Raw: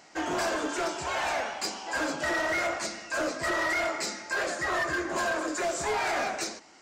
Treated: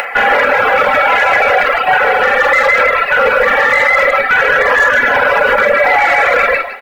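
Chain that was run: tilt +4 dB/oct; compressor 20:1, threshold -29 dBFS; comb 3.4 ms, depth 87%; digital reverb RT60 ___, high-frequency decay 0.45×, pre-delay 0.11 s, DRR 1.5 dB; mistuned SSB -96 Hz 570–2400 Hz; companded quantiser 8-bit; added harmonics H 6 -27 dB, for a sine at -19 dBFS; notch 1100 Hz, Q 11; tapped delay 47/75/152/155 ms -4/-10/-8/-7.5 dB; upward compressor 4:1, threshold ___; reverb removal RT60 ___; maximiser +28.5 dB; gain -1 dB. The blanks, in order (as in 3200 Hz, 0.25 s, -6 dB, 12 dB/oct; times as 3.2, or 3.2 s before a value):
0.42 s, -44 dBFS, 1 s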